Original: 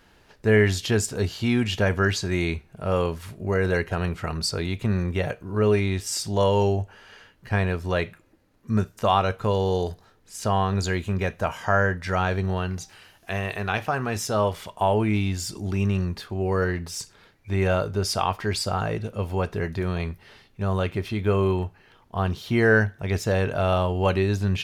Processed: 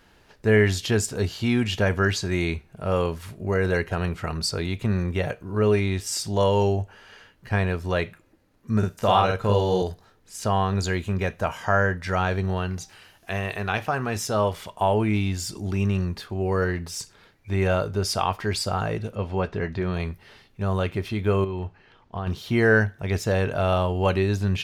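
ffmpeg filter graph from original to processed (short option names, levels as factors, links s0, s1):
-filter_complex "[0:a]asettb=1/sr,asplit=3[s0][s1][s2];[s0]atrim=end=8.784[s3];[s1]atrim=start=8.78:end=9.82,asetpts=PTS-STARTPTS,afade=t=in:d=0.004:c=qsin,afade=t=out:st=1.036:d=0.004:c=qsin,bandreject=f=1100:w=21,asplit=2[s4][s5];[s5]adelay=49,volume=0.794[s6];[s4][s6]amix=inputs=2:normalize=0,atrim=end_sample=45864[s7];[s2]atrim=start=9.816[s8];[s3][s7]acrossfade=d=0.004:c1=hsin:c2=qsin[s9];[s9][s8]acrossfade=d=0.004:c1=qsin:c2=hsin,asettb=1/sr,asplit=3[s10][s11][s12];[s10]atrim=end=19.154[s13];[s11]atrim=start=19.15:end=19.94,asetpts=PTS-STARTPTS,afade=t=in:d=0.004:c=qsin,afade=t=out:st=0.786:d=0.004:c=qsin,lowpass=4800,asplit=2[s14][s15];[s15]adelay=16,volume=0.224[s16];[s14][s16]amix=inputs=2:normalize=0,atrim=end_sample=34839[s17];[s12]atrim=start=19.936[s18];[s13][s17]acrossfade=d=0.004:c1=hsin:c2=qsin[s19];[s19][s18]acrossfade=d=0.004:c1=qsin:c2=hsin,asettb=1/sr,asplit=3[s20][s21][s22];[s20]atrim=end=21.444[s23];[s21]atrim=start=21.44:end=22.27,asetpts=PTS-STARTPTS,afade=t=in:d=0.004:c=qsin,afade=t=out:st=0.826:d=0.004:c=qsin,lowpass=5400,acompressor=threshold=0.0562:ratio=10:attack=3.2:release=140:knee=1:detection=peak[s24];[s22]atrim=start=22.266[s25];[s23][s24]acrossfade=d=0.004:c1=hsin:c2=qsin[s26];[s26][s25]acrossfade=d=0.004:c1=qsin:c2=hsin"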